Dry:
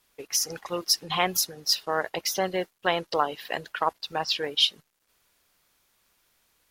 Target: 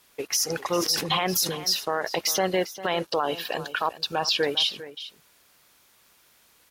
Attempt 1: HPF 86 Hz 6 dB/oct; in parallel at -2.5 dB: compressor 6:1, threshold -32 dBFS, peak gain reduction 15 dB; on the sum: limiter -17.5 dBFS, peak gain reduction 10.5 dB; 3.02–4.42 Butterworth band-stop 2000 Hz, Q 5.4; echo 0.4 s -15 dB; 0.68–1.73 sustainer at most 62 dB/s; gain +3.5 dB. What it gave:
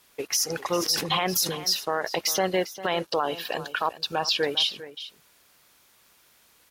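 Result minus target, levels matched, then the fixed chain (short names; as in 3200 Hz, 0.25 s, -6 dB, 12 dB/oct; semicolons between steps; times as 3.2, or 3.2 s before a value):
compressor: peak gain reduction +8 dB
HPF 86 Hz 6 dB/oct; in parallel at -2.5 dB: compressor 6:1, threshold -22.5 dBFS, peak gain reduction 7 dB; on the sum: limiter -17.5 dBFS, peak gain reduction 12.5 dB; 3.02–4.42 Butterworth band-stop 2000 Hz, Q 5.4; echo 0.4 s -15 dB; 0.68–1.73 sustainer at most 62 dB/s; gain +3.5 dB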